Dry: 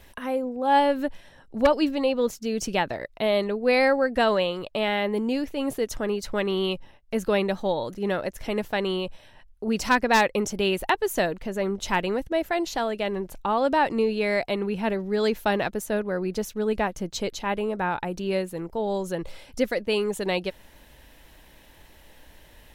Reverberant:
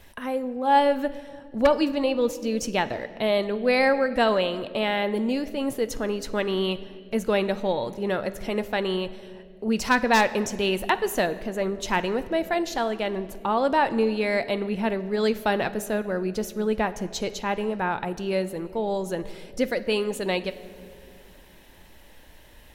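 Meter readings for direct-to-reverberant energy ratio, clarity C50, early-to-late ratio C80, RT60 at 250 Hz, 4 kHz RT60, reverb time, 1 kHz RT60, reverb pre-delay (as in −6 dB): 12.0 dB, 15.0 dB, 16.0 dB, 3.5 s, 1.5 s, 2.4 s, 1.8 s, 9 ms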